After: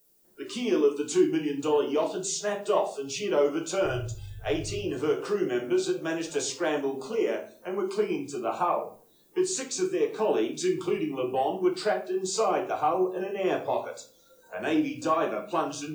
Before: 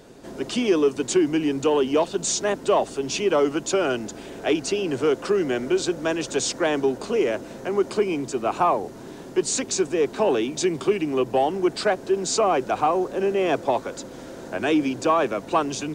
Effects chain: 3.85–4.83 resonant low shelf 150 Hz +12.5 dB, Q 3; spectral noise reduction 24 dB; added noise violet -58 dBFS; shoebox room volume 33 m³, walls mixed, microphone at 0.51 m; gain -8.5 dB

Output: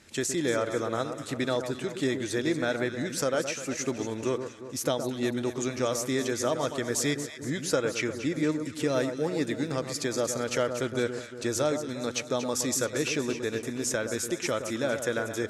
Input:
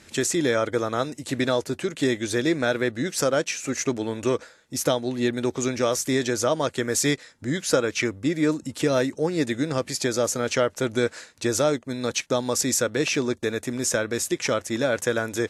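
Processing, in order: echo with dull and thin repeats by turns 0.117 s, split 1400 Hz, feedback 71%, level -8 dB; 9.21–10.15 crackle 88/s -39 dBFS; gain -5.5 dB

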